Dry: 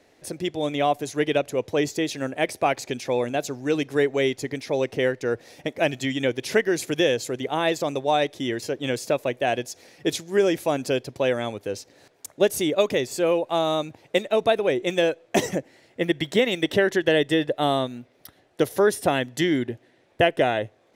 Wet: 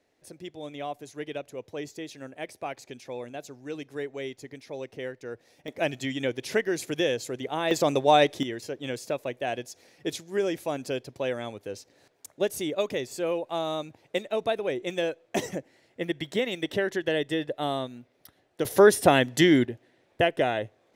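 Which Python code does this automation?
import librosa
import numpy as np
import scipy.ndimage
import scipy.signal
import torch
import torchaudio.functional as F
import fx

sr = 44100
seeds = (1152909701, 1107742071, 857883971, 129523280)

y = fx.gain(x, sr, db=fx.steps((0.0, -13.0), (5.68, -5.0), (7.71, 2.5), (8.43, -7.0), (18.65, 3.0), (19.65, -4.0)))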